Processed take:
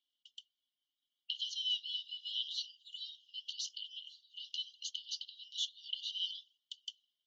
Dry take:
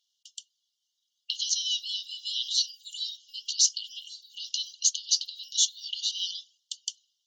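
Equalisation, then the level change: vowel filter i; treble shelf 4.1 kHz -8.5 dB; +8.0 dB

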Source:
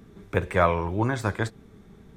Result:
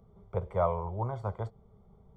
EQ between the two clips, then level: Savitzky-Golay filter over 41 samples; static phaser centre 700 Hz, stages 4; -4.5 dB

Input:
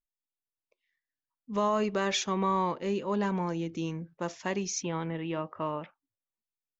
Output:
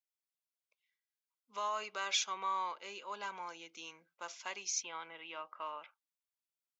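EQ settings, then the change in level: high-pass 1.2 kHz 12 dB/octave; Butterworth band-stop 1.8 kHz, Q 6.5; -2.0 dB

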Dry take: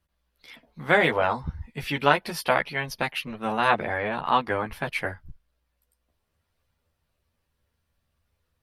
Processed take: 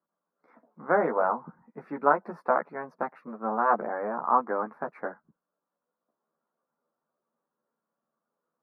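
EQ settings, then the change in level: elliptic band-pass 190–1300 Hz, stop band 40 dB; tilt EQ +1.5 dB/octave; 0.0 dB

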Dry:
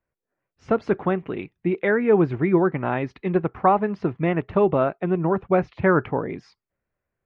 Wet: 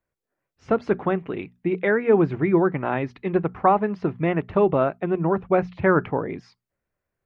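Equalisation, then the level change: hum notches 60/120/180/240 Hz; 0.0 dB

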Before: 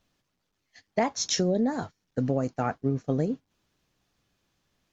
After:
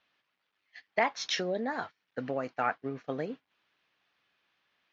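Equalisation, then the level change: band-pass filter 2.4 kHz, Q 0.87; distance through air 200 m; +8.0 dB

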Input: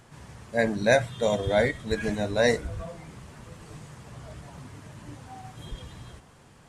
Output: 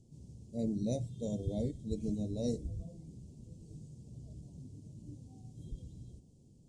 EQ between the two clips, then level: Chebyshev band-stop 280–7400 Hz, order 2; distance through air 79 m; -4.5 dB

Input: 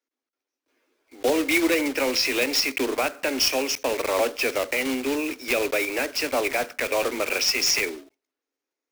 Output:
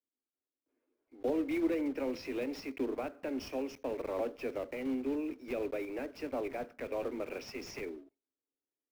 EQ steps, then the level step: FFT filter 270 Hz 0 dB, 7.5 kHz -24 dB, 13 kHz -22 dB; -6.5 dB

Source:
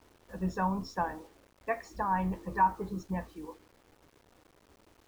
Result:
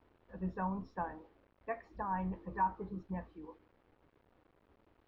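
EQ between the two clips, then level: distance through air 370 m; -5.5 dB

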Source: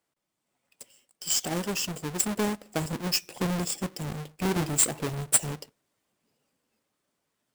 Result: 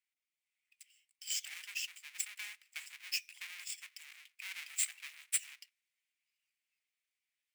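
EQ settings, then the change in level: ladder high-pass 2 kHz, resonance 60%; -1.5 dB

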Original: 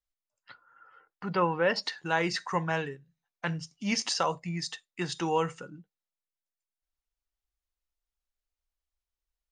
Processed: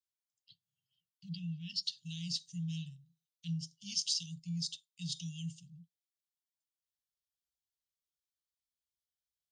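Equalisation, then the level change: high-pass 130 Hz 12 dB/octave; Chebyshev band-stop 170–3100 Hz, order 5; treble shelf 8.1 kHz -3 dB; -1.0 dB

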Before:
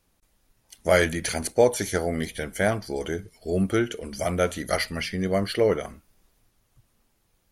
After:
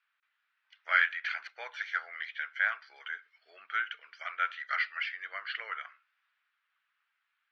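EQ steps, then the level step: elliptic band-pass 1.4–5.7 kHz, stop band 80 dB; distance through air 500 m; treble shelf 3.8 kHz -7 dB; +7.0 dB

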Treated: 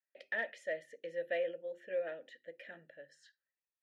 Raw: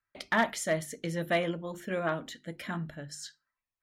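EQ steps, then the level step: vowel filter e; bass shelf 240 Hz -8 dB; +1.5 dB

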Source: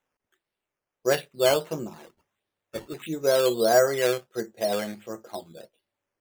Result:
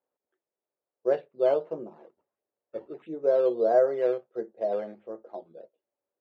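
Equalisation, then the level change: band-pass filter 510 Hz, Q 1.5; distance through air 110 m; 0.0 dB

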